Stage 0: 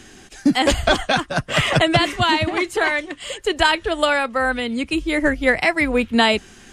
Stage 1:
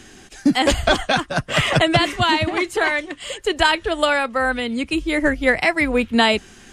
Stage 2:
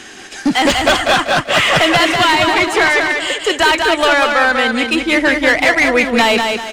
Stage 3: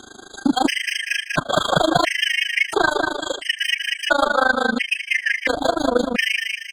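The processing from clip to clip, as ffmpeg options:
ffmpeg -i in.wav -af anull out.wav
ffmpeg -i in.wav -filter_complex "[0:a]asplit=2[link_01][link_02];[link_02]highpass=frequency=720:poles=1,volume=22dB,asoftclip=type=tanh:threshold=-1dB[link_03];[link_01][link_03]amix=inputs=2:normalize=0,lowpass=frequency=4400:poles=1,volume=-6dB,asplit=2[link_04][link_05];[link_05]aecho=0:1:193|386|579|772|965:0.596|0.214|0.0772|0.0278|0.01[link_06];[link_04][link_06]amix=inputs=2:normalize=0,volume=-3dB" out.wav
ffmpeg -i in.wav -af "tremolo=f=26:d=0.947,afftfilt=real='re*gt(sin(2*PI*0.73*pts/sr)*(1-2*mod(floor(b*sr/1024/1600),2)),0)':imag='im*gt(sin(2*PI*0.73*pts/sr)*(1-2*mod(floor(b*sr/1024/1600),2)),0)':win_size=1024:overlap=0.75" out.wav

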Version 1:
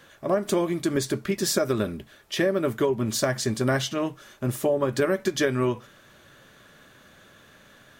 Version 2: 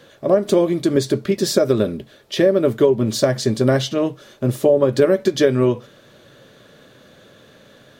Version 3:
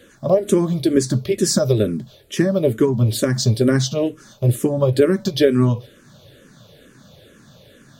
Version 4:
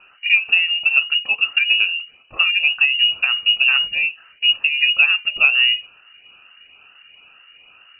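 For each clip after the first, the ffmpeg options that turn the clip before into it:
ffmpeg -i in.wav -af "equalizer=frequency=125:width_type=o:width=1:gain=7,equalizer=frequency=250:width_type=o:width=1:gain=5,equalizer=frequency=500:width_type=o:width=1:gain=11,equalizer=frequency=4000:width_type=o:width=1:gain=7,volume=-1dB" out.wav
ffmpeg -i in.wav -filter_complex "[0:a]bass=frequency=250:gain=9,treble=frequency=4000:gain=7,asplit=2[link_01][link_02];[link_02]afreqshift=-2.2[link_03];[link_01][link_03]amix=inputs=2:normalize=1" out.wav
ffmpeg -i in.wav -af "lowpass=frequency=2600:width_type=q:width=0.5098,lowpass=frequency=2600:width_type=q:width=0.6013,lowpass=frequency=2600:width_type=q:width=0.9,lowpass=frequency=2600:width_type=q:width=2.563,afreqshift=-3000" out.wav

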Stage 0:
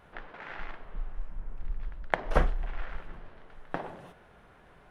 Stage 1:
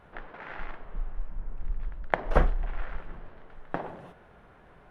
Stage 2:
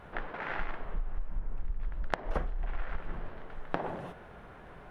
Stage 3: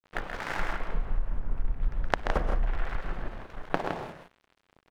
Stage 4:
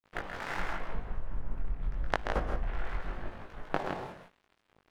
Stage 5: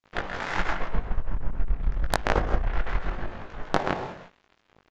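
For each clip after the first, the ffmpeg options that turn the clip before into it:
ffmpeg -i in.wav -af "highshelf=frequency=3000:gain=-8.5,volume=2.5dB" out.wav
ffmpeg -i in.wav -af "acompressor=threshold=-32dB:ratio=20,volume=5dB" out.wav
ffmpeg -i in.wav -filter_complex "[0:a]aeval=exprs='sgn(val(0))*max(abs(val(0))-0.00794,0)':channel_layout=same,asplit=2[link_01][link_02];[link_02]aecho=0:1:131.2|163.3:0.398|0.447[link_03];[link_01][link_03]amix=inputs=2:normalize=0,volume=5.5dB" out.wav
ffmpeg -i in.wav -af "flanger=delay=19:depth=2.7:speed=0.86" out.wav
ffmpeg -i in.wav -af "aresample=16000,aresample=44100,aeval=exprs='0.473*(cos(1*acos(clip(val(0)/0.473,-1,1)))-cos(1*PI/2))+0.119*(cos(5*acos(clip(val(0)/0.473,-1,1)))-cos(5*PI/2))+0.188*(cos(6*acos(clip(val(0)/0.473,-1,1)))-cos(6*PI/2))':channel_layout=same" out.wav

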